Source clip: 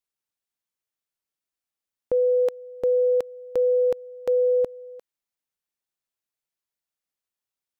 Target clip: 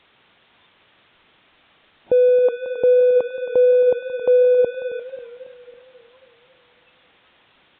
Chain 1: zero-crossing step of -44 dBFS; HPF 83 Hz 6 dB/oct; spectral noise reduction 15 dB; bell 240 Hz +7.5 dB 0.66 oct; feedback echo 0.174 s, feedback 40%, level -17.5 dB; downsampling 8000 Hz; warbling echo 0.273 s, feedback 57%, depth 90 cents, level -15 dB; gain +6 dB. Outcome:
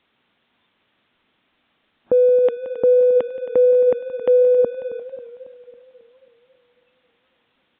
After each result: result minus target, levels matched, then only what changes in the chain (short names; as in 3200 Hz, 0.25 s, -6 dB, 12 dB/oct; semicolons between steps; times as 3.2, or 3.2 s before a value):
zero-crossing step: distortion -10 dB; 250 Hz band +4.0 dB
change: zero-crossing step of -33.5 dBFS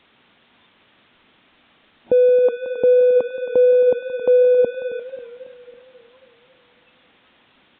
250 Hz band +3.5 dB
remove: bell 240 Hz +7.5 dB 0.66 oct